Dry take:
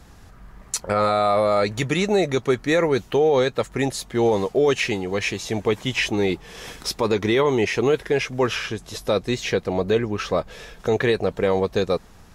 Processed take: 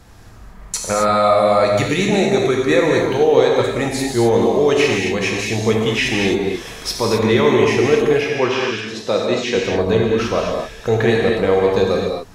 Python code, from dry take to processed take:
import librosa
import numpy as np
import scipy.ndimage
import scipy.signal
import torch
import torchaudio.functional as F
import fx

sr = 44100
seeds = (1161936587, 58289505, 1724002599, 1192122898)

y = fx.bandpass_edges(x, sr, low_hz=170.0, high_hz=fx.line((8.2, 4700.0), (9.55, 7700.0)), at=(8.2, 9.55), fade=0.02)
y = fx.rev_gated(y, sr, seeds[0], gate_ms=290, shape='flat', drr_db=-1.5)
y = y * 10.0 ** (1.5 / 20.0)